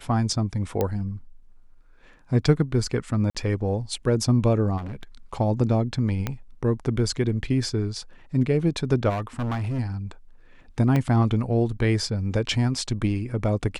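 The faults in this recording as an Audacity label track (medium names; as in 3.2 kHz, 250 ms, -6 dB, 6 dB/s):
0.810000	0.810000	pop -11 dBFS
3.300000	3.350000	dropout 47 ms
4.770000	5.030000	clipped -30.5 dBFS
6.270000	6.270000	pop -12 dBFS
9.090000	9.800000	clipped -24 dBFS
10.960000	10.960000	dropout 2 ms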